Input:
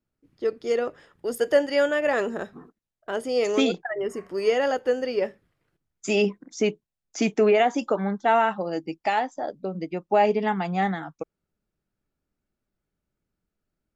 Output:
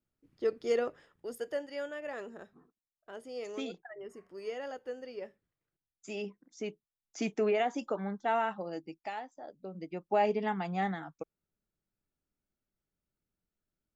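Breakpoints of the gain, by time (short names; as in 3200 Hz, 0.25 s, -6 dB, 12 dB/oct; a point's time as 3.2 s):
0.79 s -5 dB
1.62 s -17 dB
6.42 s -17 dB
7.26 s -10 dB
8.69 s -10 dB
9.31 s -18 dB
10.04 s -8 dB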